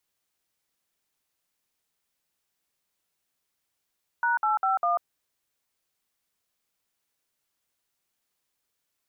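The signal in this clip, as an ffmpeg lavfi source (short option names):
-f lavfi -i "aevalsrc='0.0631*clip(min(mod(t,0.2),0.143-mod(t,0.2))/0.002,0,1)*(eq(floor(t/0.2),0)*(sin(2*PI*941*mod(t,0.2))+sin(2*PI*1477*mod(t,0.2)))+eq(floor(t/0.2),1)*(sin(2*PI*852*mod(t,0.2))+sin(2*PI*1336*mod(t,0.2)))+eq(floor(t/0.2),2)*(sin(2*PI*770*mod(t,0.2))+sin(2*PI*1336*mod(t,0.2)))+eq(floor(t/0.2),3)*(sin(2*PI*697*mod(t,0.2))+sin(2*PI*1209*mod(t,0.2))))':d=0.8:s=44100"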